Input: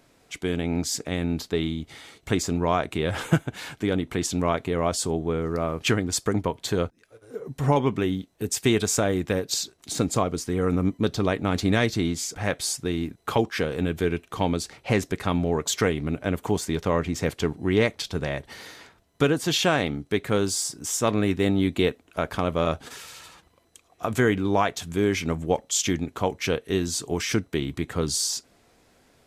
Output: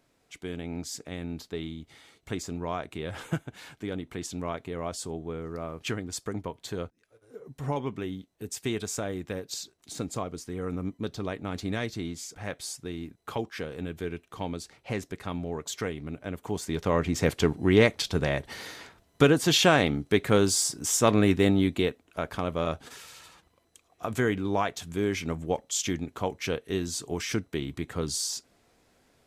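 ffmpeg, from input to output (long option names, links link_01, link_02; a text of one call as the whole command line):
ffmpeg -i in.wav -af "volume=1.5dB,afade=type=in:start_time=16.43:duration=0.87:silence=0.281838,afade=type=out:start_time=21.33:duration=0.57:silence=0.473151" out.wav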